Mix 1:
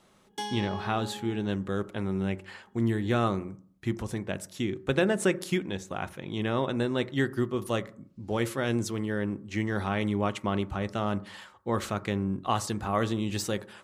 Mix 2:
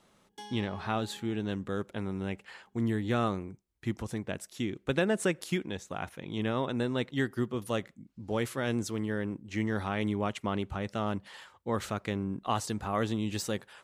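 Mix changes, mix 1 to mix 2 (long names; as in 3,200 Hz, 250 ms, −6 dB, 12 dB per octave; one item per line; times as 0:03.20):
speech: send off
background −11.0 dB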